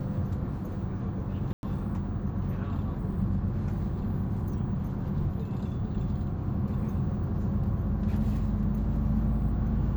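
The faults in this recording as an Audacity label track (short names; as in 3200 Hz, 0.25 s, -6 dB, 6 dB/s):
1.530000	1.630000	gap 0.101 s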